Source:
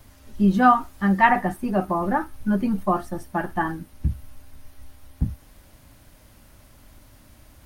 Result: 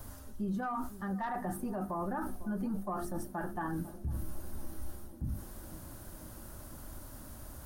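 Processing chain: tracing distortion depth 0.049 ms; notches 50/100/150/200/250/300/350 Hz; reverse; compressor 8:1, threshold -32 dBFS, peak gain reduction 20.5 dB; reverse; EQ curve 1500 Hz 0 dB, 2200 Hz -11 dB, 10000 Hz +3 dB; on a send: narrowing echo 0.498 s, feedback 81%, band-pass 310 Hz, level -17 dB; on the sum: limiter -32 dBFS, peak gain reduction 9.5 dB; gain +3.5 dB

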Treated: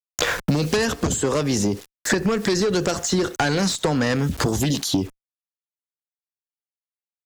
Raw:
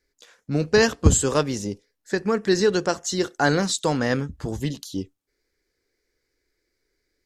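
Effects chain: bit-crush 10-bit; compressor 4:1, threshold -32 dBFS, peak gain reduction 19 dB; added harmonics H 5 -8 dB, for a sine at -18.5 dBFS; maximiser +25.5 dB; three-band squash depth 100%; gain -14.5 dB

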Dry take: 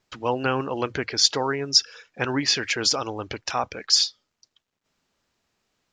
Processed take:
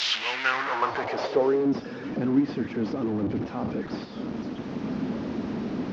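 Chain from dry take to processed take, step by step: delta modulation 32 kbps, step -19.5 dBFS; reverse echo 0.316 s -17 dB; band-pass sweep 3500 Hz -> 240 Hz, 0.07–1.79; gain +7 dB

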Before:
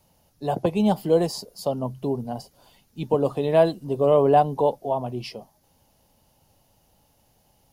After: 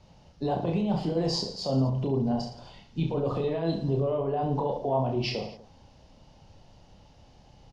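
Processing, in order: LPF 5600 Hz 24 dB/oct; low shelf 170 Hz +6.5 dB; negative-ratio compressor -24 dBFS, ratio -1; limiter -21 dBFS, peak gain reduction 10.5 dB; reverse bouncing-ball echo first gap 30 ms, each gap 1.25×, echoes 5

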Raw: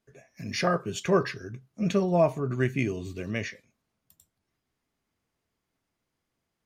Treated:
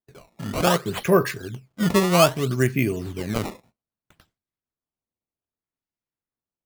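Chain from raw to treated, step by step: decimation with a swept rate 16×, swing 160% 0.63 Hz; gate with hold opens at -51 dBFS; gain +5.5 dB

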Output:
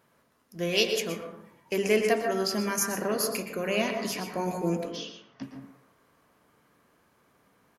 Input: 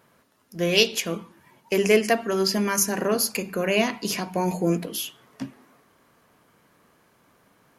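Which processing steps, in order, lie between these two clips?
4.91–5.43 steep low-pass 6200 Hz 72 dB/oct; speakerphone echo 0.11 s, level -11 dB; plate-style reverb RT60 0.6 s, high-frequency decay 0.3×, pre-delay 0.11 s, DRR 5 dB; gain -6 dB

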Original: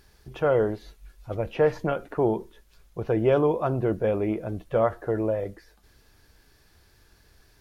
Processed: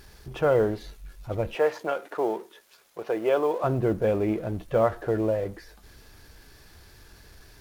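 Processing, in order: G.711 law mismatch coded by mu; 1.55–3.64 HPF 440 Hz 12 dB/oct

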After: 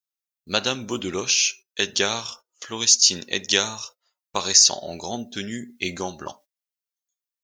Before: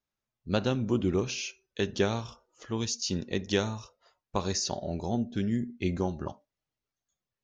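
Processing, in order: gate -52 dBFS, range -19 dB; tilt +4.5 dB/oct; gain +6.5 dB

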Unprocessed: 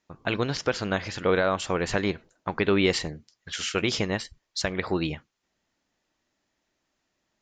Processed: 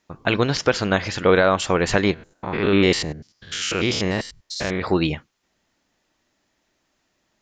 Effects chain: 2.14–4.82 stepped spectrum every 0.1 s; gain +7 dB

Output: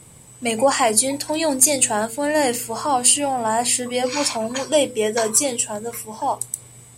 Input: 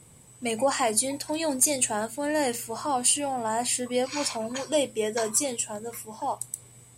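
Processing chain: notches 50/100/150/200/250/300/350/400/450/500 Hz; gain +7.5 dB

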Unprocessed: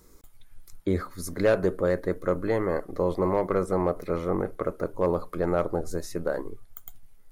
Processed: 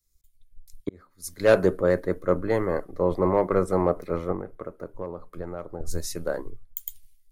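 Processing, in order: 0.89–1.57 fade in; 4.31–5.8 compressor 8:1, threshold -27 dBFS, peak gain reduction 8.5 dB; three-band expander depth 100%; gain +1.5 dB

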